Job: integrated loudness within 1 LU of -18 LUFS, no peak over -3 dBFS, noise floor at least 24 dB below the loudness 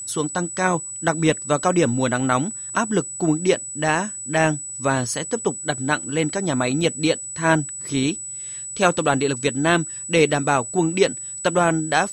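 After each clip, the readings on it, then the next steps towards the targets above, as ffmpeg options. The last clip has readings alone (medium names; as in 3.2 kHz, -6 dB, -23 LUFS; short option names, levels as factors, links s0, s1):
steady tone 7.9 kHz; tone level -30 dBFS; loudness -21.5 LUFS; peak level -3.5 dBFS; loudness target -18.0 LUFS
-> -af "bandreject=f=7900:w=30"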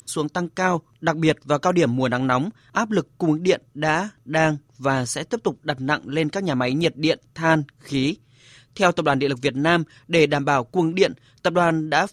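steady tone not found; loudness -22.0 LUFS; peak level -4.0 dBFS; loudness target -18.0 LUFS
-> -af "volume=1.58,alimiter=limit=0.708:level=0:latency=1"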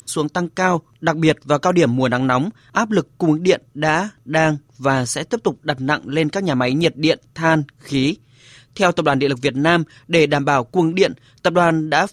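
loudness -18.5 LUFS; peak level -3.0 dBFS; noise floor -54 dBFS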